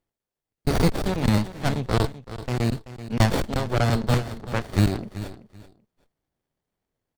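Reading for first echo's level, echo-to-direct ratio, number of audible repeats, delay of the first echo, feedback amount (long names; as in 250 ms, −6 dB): −14.0 dB, −14.0 dB, 2, 383 ms, 20%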